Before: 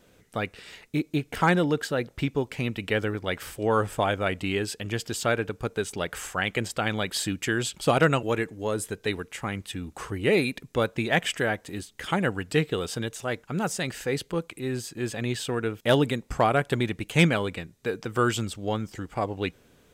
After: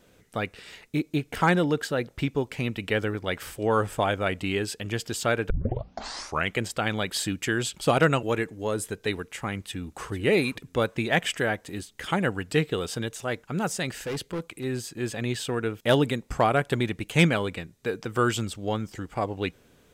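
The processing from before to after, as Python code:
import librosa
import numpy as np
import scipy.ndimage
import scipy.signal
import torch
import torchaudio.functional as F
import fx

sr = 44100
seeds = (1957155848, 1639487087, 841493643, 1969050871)

y = fx.echo_throw(x, sr, start_s=9.66, length_s=0.46, ms=450, feedback_pct=20, wet_db=-14.5)
y = fx.overload_stage(y, sr, gain_db=27.5, at=(13.93, 14.64))
y = fx.edit(y, sr, fx.tape_start(start_s=5.5, length_s=1.04), tone=tone)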